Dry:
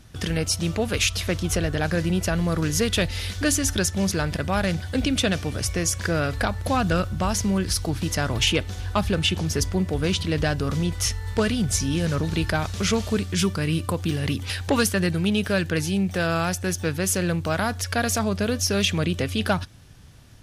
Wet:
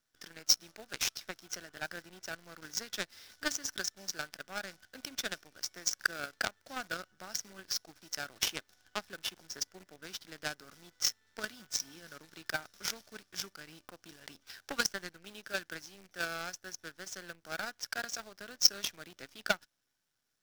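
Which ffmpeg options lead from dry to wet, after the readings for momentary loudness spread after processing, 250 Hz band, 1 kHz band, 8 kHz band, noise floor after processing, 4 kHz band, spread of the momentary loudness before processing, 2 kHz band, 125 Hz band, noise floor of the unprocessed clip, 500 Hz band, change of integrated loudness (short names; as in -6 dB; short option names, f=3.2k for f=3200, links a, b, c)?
15 LU, -27.0 dB, -15.0 dB, -10.0 dB, -77 dBFS, -8.5 dB, 4 LU, -10.0 dB, -33.5 dB, -35 dBFS, -20.5 dB, -12.5 dB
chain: -af "highpass=350,equalizer=f=470:t=q:w=4:g=-6,equalizer=f=1k:t=q:w=4:g=-9,equalizer=f=1.5k:t=q:w=4:g=10,equalizer=f=2.7k:t=q:w=4:g=-4,equalizer=f=5.5k:t=q:w=4:g=10,lowpass=f=7.2k:w=0.5412,lowpass=f=7.2k:w=1.3066,acrusher=bits=6:dc=4:mix=0:aa=0.000001,aeval=exprs='0.531*(cos(1*acos(clip(val(0)/0.531,-1,1)))-cos(1*PI/2))+0.168*(cos(3*acos(clip(val(0)/0.531,-1,1)))-cos(3*PI/2))':c=same"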